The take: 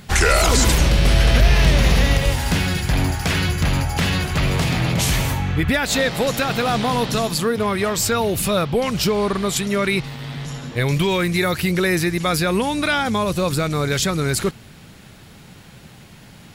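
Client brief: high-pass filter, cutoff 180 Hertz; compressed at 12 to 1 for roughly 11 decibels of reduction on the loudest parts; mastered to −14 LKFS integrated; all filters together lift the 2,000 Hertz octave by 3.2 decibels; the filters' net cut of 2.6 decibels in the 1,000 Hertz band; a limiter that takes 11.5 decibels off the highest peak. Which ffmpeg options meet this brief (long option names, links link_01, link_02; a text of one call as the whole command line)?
ffmpeg -i in.wav -af "highpass=180,equalizer=frequency=1000:width_type=o:gain=-5.5,equalizer=frequency=2000:width_type=o:gain=5.5,acompressor=threshold=-23dB:ratio=12,volume=15dB,alimiter=limit=-5.5dB:level=0:latency=1" out.wav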